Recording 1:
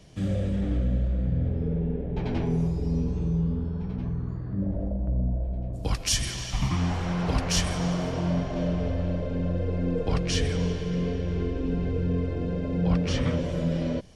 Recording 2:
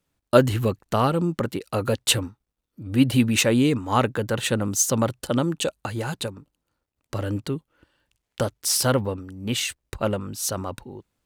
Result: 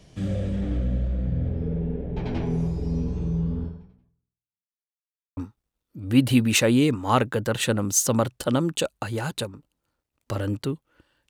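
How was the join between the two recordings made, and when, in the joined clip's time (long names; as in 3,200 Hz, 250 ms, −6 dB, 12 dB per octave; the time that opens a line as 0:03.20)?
recording 1
0:03.65–0:04.80: fade out exponential
0:04.80–0:05.37: silence
0:05.37: continue with recording 2 from 0:02.20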